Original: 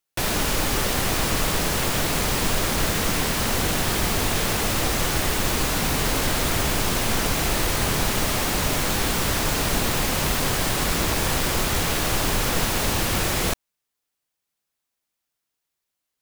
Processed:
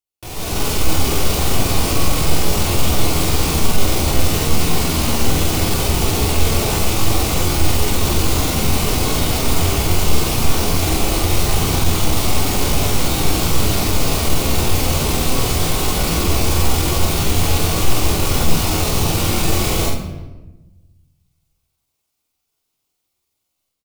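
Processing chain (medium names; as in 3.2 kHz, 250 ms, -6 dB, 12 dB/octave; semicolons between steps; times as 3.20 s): peaking EQ 1.7 kHz -10.5 dB 0.47 oct; tempo 0.68×; doubling 48 ms -6 dB; saturation -15.5 dBFS, distortion -19 dB; level rider gain up to 16 dB; peaking EQ 84 Hz +9 dB 0.75 oct; hum notches 50/100/150 Hz; on a send: reverberation RT60 1.1 s, pre-delay 3 ms, DRR 3 dB; on the sum: trim -10 dB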